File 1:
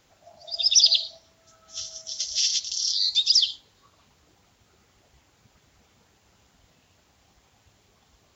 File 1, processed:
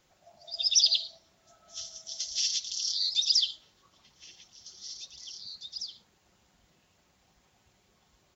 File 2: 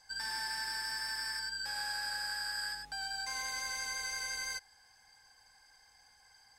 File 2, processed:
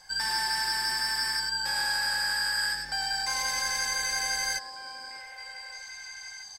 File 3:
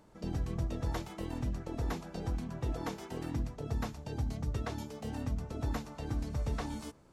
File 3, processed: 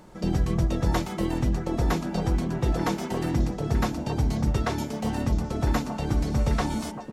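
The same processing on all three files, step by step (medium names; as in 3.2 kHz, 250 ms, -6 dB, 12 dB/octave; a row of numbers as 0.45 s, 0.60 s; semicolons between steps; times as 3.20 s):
comb 5.5 ms, depth 32%; repeats whose band climbs or falls 615 ms, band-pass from 280 Hz, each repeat 1.4 oct, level -4 dB; normalise loudness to -27 LUFS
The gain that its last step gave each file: -6.0 dB, +9.0 dB, +11.0 dB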